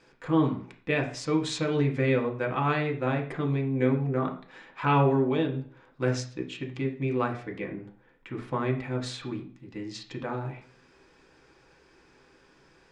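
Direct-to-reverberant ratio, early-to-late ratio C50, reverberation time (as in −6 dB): 1.0 dB, 10.0 dB, 0.45 s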